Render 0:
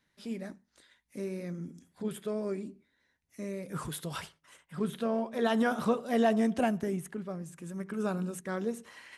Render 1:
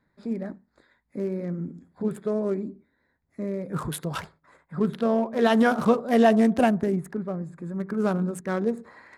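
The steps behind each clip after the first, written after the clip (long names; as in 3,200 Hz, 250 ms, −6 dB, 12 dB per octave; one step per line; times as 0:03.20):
adaptive Wiener filter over 15 samples
level +8 dB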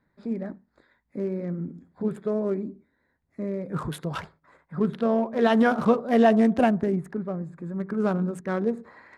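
high-shelf EQ 6,400 Hz −12 dB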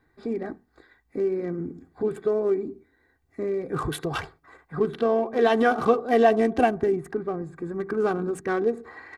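comb filter 2.6 ms, depth 69%
in parallel at +2 dB: downward compressor, threshold −30 dBFS, peak gain reduction 16.5 dB
on the sum: level −2.5 dB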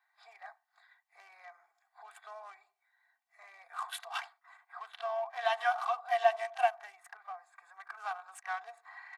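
Chebyshev high-pass with heavy ripple 680 Hz, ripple 3 dB
echo ahead of the sound 31 ms −17.5 dB
level −4.5 dB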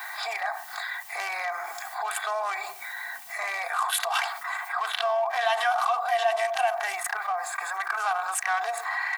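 high-shelf EQ 7,800 Hz +10 dB
envelope flattener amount 70%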